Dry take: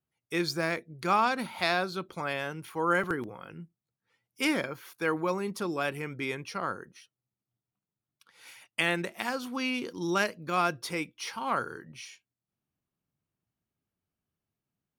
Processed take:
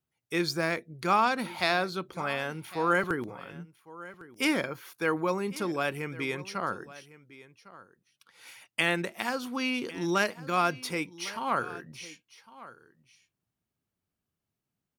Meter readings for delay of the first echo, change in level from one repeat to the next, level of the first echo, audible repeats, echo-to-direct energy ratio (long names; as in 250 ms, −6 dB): 1,105 ms, repeats not evenly spaced, −18.5 dB, 1, −18.5 dB